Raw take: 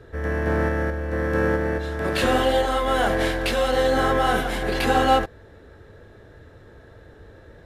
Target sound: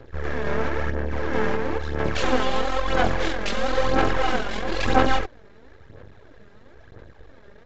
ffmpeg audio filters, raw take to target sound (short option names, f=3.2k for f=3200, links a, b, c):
-af "aeval=exprs='max(val(0),0)':c=same,aphaser=in_gain=1:out_gain=1:delay=5:decay=0.53:speed=1:type=sinusoidal,aresample=16000,aresample=44100"